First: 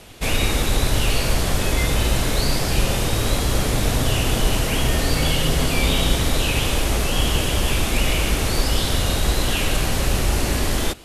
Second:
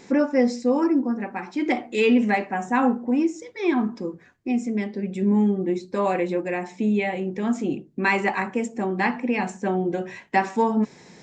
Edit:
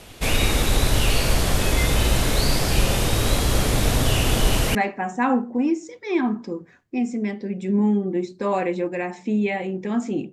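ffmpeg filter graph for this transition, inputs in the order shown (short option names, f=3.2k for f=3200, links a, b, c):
-filter_complex "[0:a]apad=whole_dur=10.32,atrim=end=10.32,atrim=end=4.752[a];[1:a]atrim=start=2.278:end=7.85[b];[a][b]acrossfade=d=0.004:c1=hsin:c2=hsin"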